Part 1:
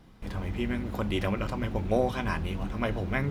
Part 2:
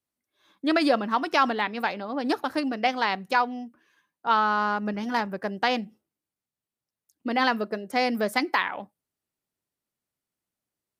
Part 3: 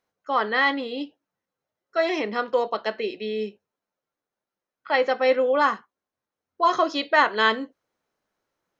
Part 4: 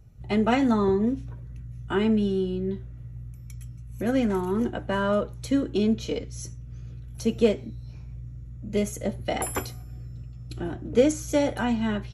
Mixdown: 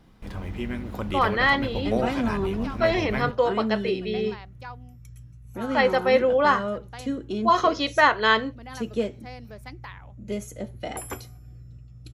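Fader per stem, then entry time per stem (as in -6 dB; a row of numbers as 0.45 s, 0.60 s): -0.5 dB, -18.0 dB, +0.5 dB, -5.5 dB; 0.00 s, 1.30 s, 0.85 s, 1.55 s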